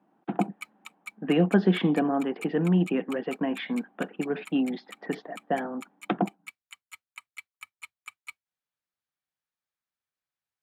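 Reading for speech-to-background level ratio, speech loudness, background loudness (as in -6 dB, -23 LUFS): 18.0 dB, -28.0 LUFS, -46.0 LUFS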